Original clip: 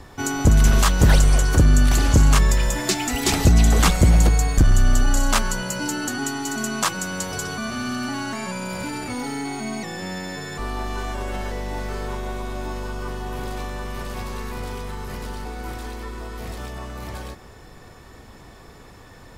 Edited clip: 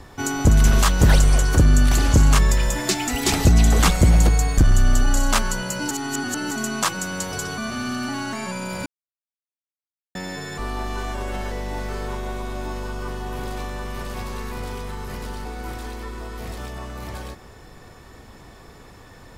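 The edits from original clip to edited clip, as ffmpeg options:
ffmpeg -i in.wav -filter_complex "[0:a]asplit=5[link_01][link_02][link_03][link_04][link_05];[link_01]atrim=end=5.912[link_06];[link_02]atrim=start=5.908:end=6.512,asetpts=PTS-STARTPTS,areverse[link_07];[link_03]atrim=start=6.508:end=8.86,asetpts=PTS-STARTPTS,afade=type=out:start_time=2.348:duration=0.004:curve=hsin[link_08];[link_04]atrim=start=8.86:end=10.15,asetpts=PTS-STARTPTS,volume=0[link_09];[link_05]atrim=start=10.15,asetpts=PTS-STARTPTS,afade=type=in:duration=0.004:curve=hsin[link_10];[link_06][link_07]acrossfade=duration=0.004:curve1=hsin:curve2=hsin[link_11];[link_08][link_09][link_10]concat=n=3:v=0:a=1[link_12];[link_11][link_12]acrossfade=duration=0.004:curve1=hsin:curve2=hsin" out.wav

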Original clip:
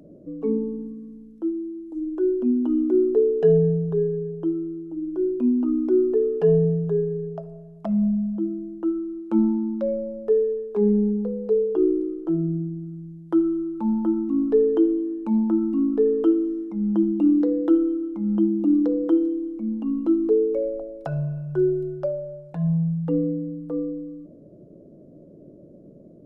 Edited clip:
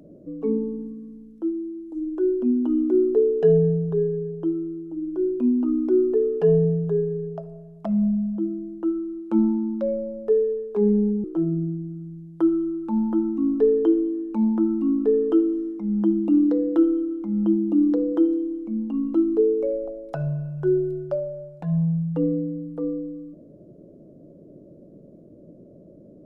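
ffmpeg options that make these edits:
ffmpeg -i in.wav -filter_complex "[0:a]asplit=2[link_01][link_02];[link_01]atrim=end=11.242[link_03];[link_02]atrim=start=12.158[link_04];[link_03][link_04]acrossfade=duration=0.004:curve1=hsin:curve2=hsin" out.wav

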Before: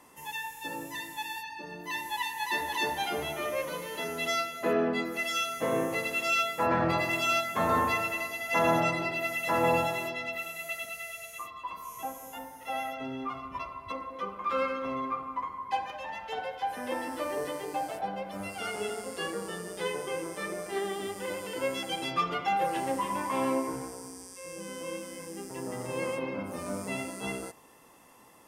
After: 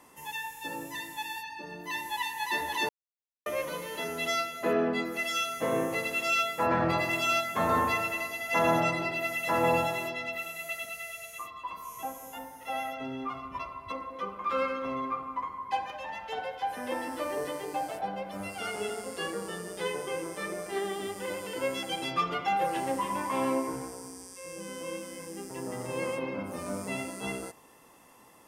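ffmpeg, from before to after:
ffmpeg -i in.wav -filter_complex "[0:a]asplit=3[link_01][link_02][link_03];[link_01]atrim=end=2.89,asetpts=PTS-STARTPTS,afade=type=out:start_time=2.886:duration=0.004:curve=hsin[link_04];[link_02]atrim=start=2.89:end=3.46,asetpts=PTS-STARTPTS,volume=0[link_05];[link_03]atrim=start=3.46,asetpts=PTS-STARTPTS,afade=type=in:duration=0.004:curve=hsin[link_06];[link_04][link_05][link_06]concat=n=3:v=0:a=1" out.wav

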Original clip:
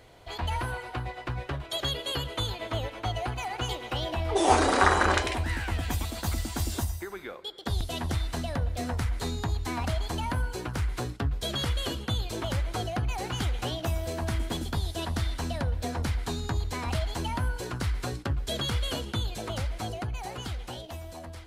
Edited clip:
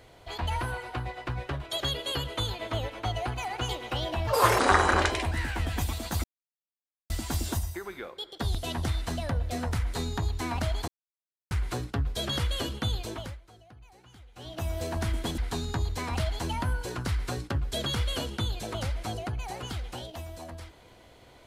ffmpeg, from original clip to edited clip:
ffmpeg -i in.wav -filter_complex "[0:a]asplit=9[link_01][link_02][link_03][link_04][link_05][link_06][link_07][link_08][link_09];[link_01]atrim=end=4.274[link_10];[link_02]atrim=start=4.27:end=4.71,asetpts=PTS-STARTPTS,asetrate=60858,aresample=44100[link_11];[link_03]atrim=start=4.706:end=6.36,asetpts=PTS-STARTPTS,afade=type=out:start_time=1.65:duration=0.004:curve=hsin,apad=pad_dur=0.86[link_12];[link_04]atrim=start=6.36:end=10.14,asetpts=PTS-STARTPTS,afade=type=in:duration=0.004:curve=hsin,afade=type=out:start_time=3.776:duration=0.004:curve=hsin[link_13];[link_05]atrim=start=10.14:end=10.77,asetpts=PTS-STARTPTS,volume=0[link_14];[link_06]atrim=start=10.77:end=12.67,asetpts=PTS-STARTPTS,afade=type=in:duration=0.004:curve=hsin,afade=type=out:start_time=1.45:duration=0.45:silence=0.0707946[link_15];[link_07]atrim=start=12.67:end=13.6,asetpts=PTS-STARTPTS,volume=-23dB[link_16];[link_08]atrim=start=13.6:end=14.642,asetpts=PTS-STARTPTS,afade=type=in:duration=0.45:silence=0.0707946[link_17];[link_09]atrim=start=16.128[link_18];[link_10][link_11]acrossfade=duration=0.004:curve1=hsin:curve2=hsin[link_19];[link_12][link_13][link_14][link_15][link_16][link_17]concat=n=6:v=0:a=1[link_20];[link_19][link_20]acrossfade=duration=0.004:curve1=hsin:curve2=hsin[link_21];[link_21][link_18]acrossfade=duration=0.004:curve1=hsin:curve2=hsin" out.wav

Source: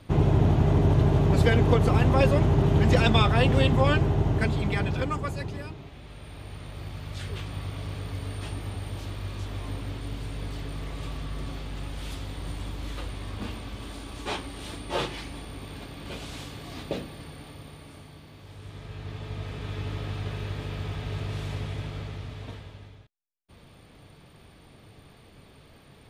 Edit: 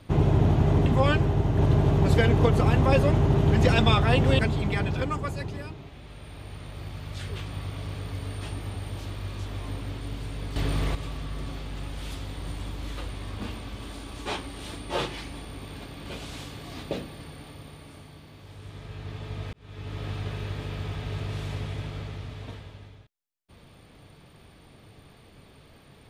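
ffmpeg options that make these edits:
ffmpeg -i in.wav -filter_complex "[0:a]asplit=7[link_01][link_02][link_03][link_04][link_05][link_06][link_07];[link_01]atrim=end=0.862[link_08];[link_02]atrim=start=3.668:end=4.392[link_09];[link_03]atrim=start=0.858:end=3.672[link_10];[link_04]atrim=start=4.388:end=10.562[link_11];[link_05]atrim=start=10.558:end=10.952,asetpts=PTS-STARTPTS,volume=8.5dB[link_12];[link_06]atrim=start=10.948:end=19.53,asetpts=PTS-STARTPTS,afade=type=out:start_time=8.578:duration=0.004:curve=hsin[link_13];[link_07]atrim=start=19.53,asetpts=PTS-STARTPTS,afade=type=in:duration=0.54[link_14];[link_08][link_09]acrossfade=duration=0.004:curve1=hsin:curve2=hsin[link_15];[link_15][link_10]acrossfade=duration=0.004:curve1=hsin:curve2=hsin[link_16];[link_16][link_11]acrossfade=duration=0.004:curve1=hsin:curve2=hsin[link_17];[link_17][link_12]acrossfade=duration=0.004:curve1=hsin:curve2=hsin[link_18];[link_13][link_14]concat=n=2:v=0:a=1[link_19];[link_18][link_19]acrossfade=duration=0.004:curve1=hsin:curve2=hsin" out.wav

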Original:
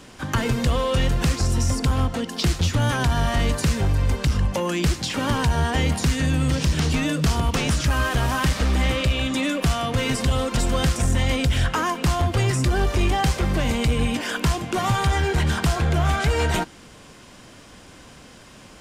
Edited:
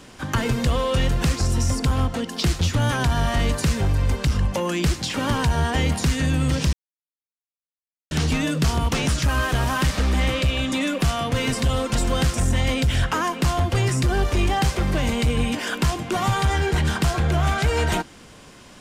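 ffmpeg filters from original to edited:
ffmpeg -i in.wav -filter_complex "[0:a]asplit=2[link_01][link_02];[link_01]atrim=end=6.73,asetpts=PTS-STARTPTS,afade=type=out:start_time=6.726:duration=0.004:curve=hsin,apad=pad_dur=1.38[link_03];[link_02]atrim=start=6.73,asetpts=PTS-STARTPTS,afade=type=in:duration=0.004:curve=hsin[link_04];[link_03][link_04]concat=n=2:v=0:a=1" out.wav

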